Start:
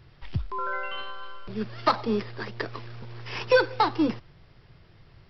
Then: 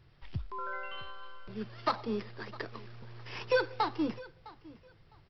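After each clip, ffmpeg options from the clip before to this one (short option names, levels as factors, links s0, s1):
-af "aecho=1:1:658|1316:0.1|0.021,volume=0.398"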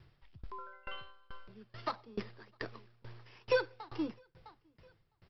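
-af "aeval=exprs='val(0)*pow(10,-27*if(lt(mod(2.3*n/s,1),2*abs(2.3)/1000),1-mod(2.3*n/s,1)/(2*abs(2.3)/1000),(mod(2.3*n/s,1)-2*abs(2.3)/1000)/(1-2*abs(2.3)/1000))/20)':c=same,volume=1.33"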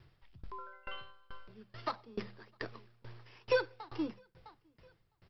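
-af "bandreject=f=50:t=h:w=6,bandreject=f=100:t=h:w=6,bandreject=f=150:t=h:w=6,bandreject=f=200:t=h:w=6"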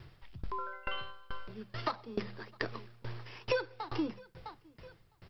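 -af "acompressor=threshold=0.00891:ratio=3,volume=2.82"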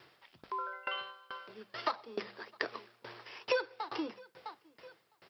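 -af "highpass=400,volume=1.19"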